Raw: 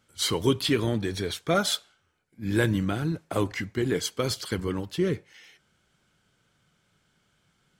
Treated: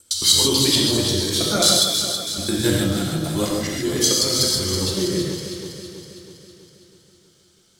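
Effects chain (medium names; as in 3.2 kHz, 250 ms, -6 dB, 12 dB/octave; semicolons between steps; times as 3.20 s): time reversed locally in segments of 108 ms; resonant high shelf 3.2 kHz +11.5 dB, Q 1.5; echo whose repeats swap between lows and highs 162 ms, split 1.7 kHz, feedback 75%, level -5 dB; gated-style reverb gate 180 ms flat, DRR -3 dB; trim -1.5 dB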